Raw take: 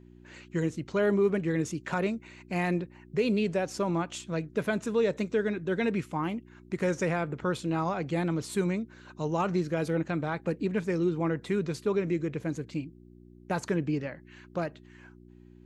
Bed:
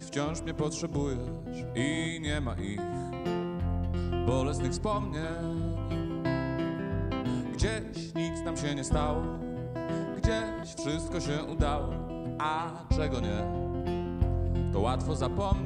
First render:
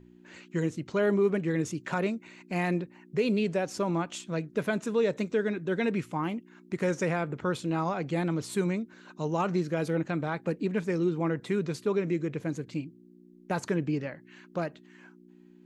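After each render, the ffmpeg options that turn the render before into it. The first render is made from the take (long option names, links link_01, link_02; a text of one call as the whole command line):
ffmpeg -i in.wav -af "bandreject=frequency=60:width_type=h:width=4,bandreject=frequency=120:width_type=h:width=4" out.wav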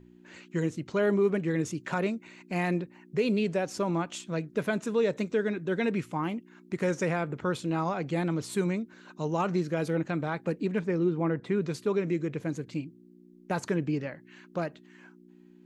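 ffmpeg -i in.wav -filter_complex "[0:a]asettb=1/sr,asplit=3[link_01][link_02][link_03];[link_01]atrim=end=10.794[link_04];[link_02]atrim=start=10.79:end=11.62,asetpts=PTS-STARTPTS,afade=type=in:duration=0.004:curve=qsin,afade=type=out:start_time=0.826:duration=0.004:curve=qsin,aemphasis=mode=reproduction:type=75fm[link_05];[link_03]atrim=start=11.616[link_06];[link_04][link_05]acrossfade=duration=0.004:curve1=hsin:curve2=qsin[link_07];[link_07][link_06]acrossfade=duration=0.004:curve1=qsin:curve2=hsin" out.wav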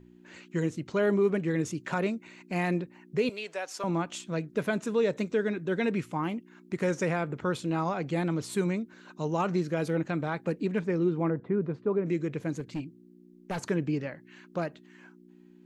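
ffmpeg -i in.wav -filter_complex "[0:a]asettb=1/sr,asplit=3[link_01][link_02][link_03];[link_01]atrim=end=3.294[link_04];[link_02]atrim=start=3.29:end=3.84,asetpts=PTS-STARTPTS,afade=type=in:duration=0.004:curve=qsin,afade=type=out:start_time=0.546:duration=0.004:curve=qsin,highpass=760[link_05];[link_03]atrim=start=3.836[link_06];[link_04][link_05]acrossfade=duration=0.004:curve1=hsin:curve2=qsin[link_07];[link_07][link_06]acrossfade=duration=0.004:curve1=qsin:curve2=hsin,asettb=1/sr,asplit=3[link_08][link_09][link_10];[link_08]atrim=end=11.304[link_11];[link_09]atrim=start=11.3:end=12.06,asetpts=PTS-STARTPTS,afade=type=in:duration=0.004:curve=qsin,afade=type=out:start_time=0.756:duration=0.004:curve=qsin,lowpass=1200[link_12];[link_10]atrim=start=12.056[link_13];[link_11][link_12]acrossfade=duration=0.004:curve1=hsin:curve2=qsin[link_14];[link_14][link_13]acrossfade=duration=0.004:curve1=qsin:curve2=hsin,asettb=1/sr,asplit=3[link_15][link_16][link_17];[link_15]atrim=end=12.604[link_18];[link_16]atrim=start=12.6:end=13.62,asetpts=PTS-STARTPTS,afade=type=in:duration=0.004:curve=qsin,afade=type=out:start_time=1.016:duration=0.004:curve=qsin,asoftclip=type=hard:threshold=-28.5dB[link_19];[link_17]atrim=start=13.616[link_20];[link_18][link_19]acrossfade=duration=0.004:curve1=hsin:curve2=qsin[link_21];[link_21][link_20]acrossfade=duration=0.004:curve1=qsin:curve2=hsin" out.wav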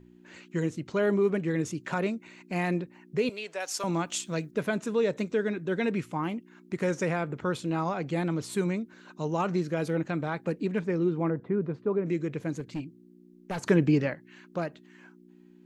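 ffmpeg -i in.wav -filter_complex "[0:a]asettb=1/sr,asplit=3[link_01][link_02][link_03];[link_01]atrim=end=3.604[link_04];[link_02]atrim=start=3.6:end=4.51,asetpts=PTS-STARTPTS,afade=type=in:duration=0.004:curve=qsin,afade=type=out:start_time=0.906:duration=0.004:curve=qsin,highshelf=frequency=3700:gain=11[link_05];[link_03]atrim=start=4.506[link_06];[link_04][link_05]acrossfade=duration=0.004:curve1=hsin:curve2=qsin[link_07];[link_07][link_06]acrossfade=duration=0.004:curve1=qsin:curve2=hsin,asplit=3[link_08][link_09][link_10];[link_08]afade=type=out:start_time=13.66:duration=0.02[link_11];[link_09]acontrast=78,afade=type=in:start_time=13.66:duration=0.02,afade=type=out:start_time=14.13:duration=0.02[link_12];[link_10]afade=type=in:start_time=14.13:duration=0.02[link_13];[link_11][link_12][link_13]amix=inputs=3:normalize=0" out.wav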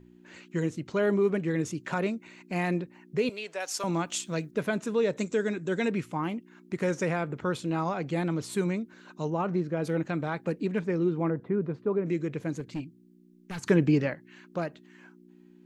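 ffmpeg -i in.wav -filter_complex "[0:a]asettb=1/sr,asplit=3[link_01][link_02][link_03];[link_01]atrim=end=5.194[link_04];[link_02]atrim=start=5.19:end=5.88,asetpts=PTS-STARTPTS,afade=type=in:duration=0.004:curve=qsin,afade=type=out:start_time=0.686:duration=0.004:curve=qsin,lowpass=frequency=7400:width_type=q:width=6.6[link_05];[link_03]atrim=start=5.876[link_06];[link_04][link_05]acrossfade=duration=0.004:curve1=hsin:curve2=qsin[link_07];[link_07][link_06]acrossfade=duration=0.004:curve1=qsin:curve2=hsin,asplit=3[link_08][link_09][link_10];[link_08]afade=type=out:start_time=9.29:duration=0.02[link_11];[link_09]lowpass=frequency=1400:poles=1,afade=type=in:start_time=9.29:duration=0.02,afade=type=out:start_time=9.83:duration=0.02[link_12];[link_10]afade=type=in:start_time=9.83:duration=0.02[link_13];[link_11][link_12][link_13]amix=inputs=3:normalize=0,asettb=1/sr,asplit=3[link_14][link_15][link_16];[link_14]atrim=end=12.844[link_17];[link_15]atrim=start=12.84:end=13.7,asetpts=PTS-STARTPTS,afade=type=in:duration=0.004:curve=qsin,afade=type=out:start_time=0.856:duration=0.004:curve=qsin,equalizer=frequency=590:width_type=o:width=1.2:gain=-14[link_18];[link_16]atrim=start=13.696[link_19];[link_17][link_18]acrossfade=duration=0.004:curve1=hsin:curve2=qsin[link_20];[link_20][link_19]acrossfade=duration=0.004:curve1=qsin:curve2=hsin" out.wav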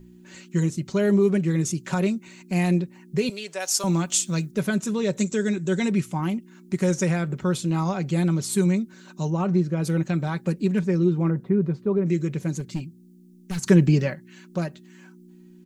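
ffmpeg -i in.wav -af "bass=frequency=250:gain=8,treble=frequency=4000:gain=12,aecho=1:1:5.3:0.49" out.wav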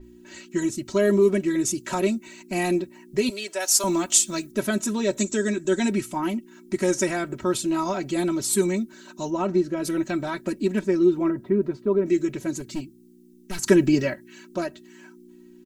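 ffmpeg -i in.wav -af "aecho=1:1:3.1:0.86,adynamicequalizer=threshold=0.00794:dfrequency=7300:dqfactor=0.7:tfrequency=7300:tqfactor=0.7:attack=5:release=100:ratio=0.375:range=2.5:mode=boostabove:tftype=highshelf" out.wav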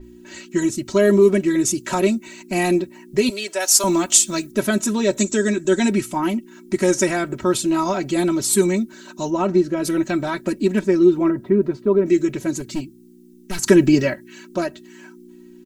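ffmpeg -i in.wav -af "volume=5dB,alimiter=limit=-1dB:level=0:latency=1" out.wav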